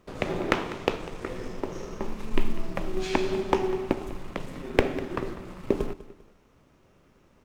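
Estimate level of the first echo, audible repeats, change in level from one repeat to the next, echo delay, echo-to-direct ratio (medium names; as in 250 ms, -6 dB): -16.5 dB, 2, -9.0 dB, 198 ms, -16.0 dB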